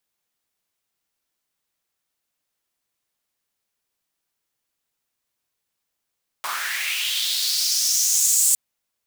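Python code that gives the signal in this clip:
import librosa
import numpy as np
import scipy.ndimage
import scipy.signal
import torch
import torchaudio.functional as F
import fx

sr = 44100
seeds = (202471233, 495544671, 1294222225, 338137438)

y = fx.riser_noise(sr, seeds[0], length_s=2.11, colour='pink', kind='highpass', start_hz=890.0, end_hz=7900.0, q=3.8, swell_db=13, law='linear')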